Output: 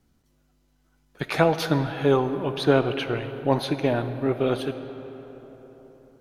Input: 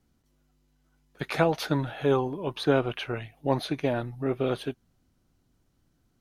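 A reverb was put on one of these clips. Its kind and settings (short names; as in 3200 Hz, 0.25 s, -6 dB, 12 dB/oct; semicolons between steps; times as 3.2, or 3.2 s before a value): digital reverb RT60 4.4 s, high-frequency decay 0.5×, pre-delay 5 ms, DRR 10 dB; gain +3.5 dB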